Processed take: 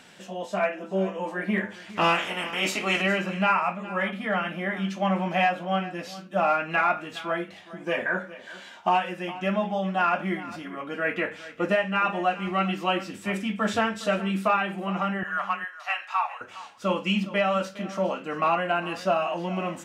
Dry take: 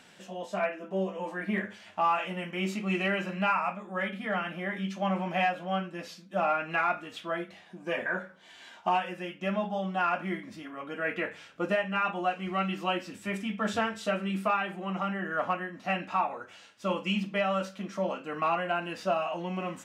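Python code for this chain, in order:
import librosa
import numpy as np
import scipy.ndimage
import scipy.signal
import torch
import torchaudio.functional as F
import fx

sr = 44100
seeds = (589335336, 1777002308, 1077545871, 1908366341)

y = fx.spec_clip(x, sr, under_db=21, at=(1.89, 3.0), fade=0.02)
y = fx.highpass(y, sr, hz=890.0, slope=24, at=(15.23, 16.41))
y = y + 10.0 ** (-16.5 / 20.0) * np.pad(y, (int(411 * sr / 1000.0), 0))[:len(y)]
y = F.gain(torch.from_numpy(y), 4.5).numpy()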